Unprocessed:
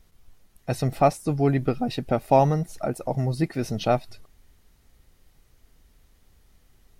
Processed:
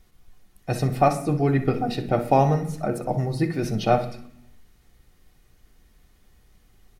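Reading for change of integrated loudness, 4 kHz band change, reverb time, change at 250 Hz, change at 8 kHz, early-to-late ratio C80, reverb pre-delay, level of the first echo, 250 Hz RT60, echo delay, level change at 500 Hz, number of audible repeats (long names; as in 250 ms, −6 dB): +1.0 dB, +0.5 dB, 0.65 s, +1.0 dB, 0.0 dB, 14.5 dB, 3 ms, −13.5 dB, 0.90 s, 62 ms, +0.5 dB, 1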